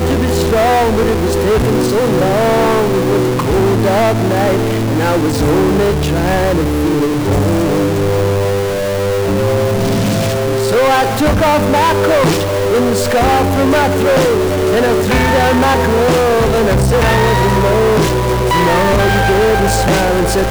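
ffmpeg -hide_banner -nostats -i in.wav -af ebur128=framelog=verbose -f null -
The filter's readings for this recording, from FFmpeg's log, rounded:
Integrated loudness:
  I:         -12.6 LUFS
  Threshold: -22.6 LUFS
Loudness range:
  LRA:         2.6 LU
  Threshold: -32.7 LUFS
  LRA low:   -14.2 LUFS
  LRA high:  -11.7 LUFS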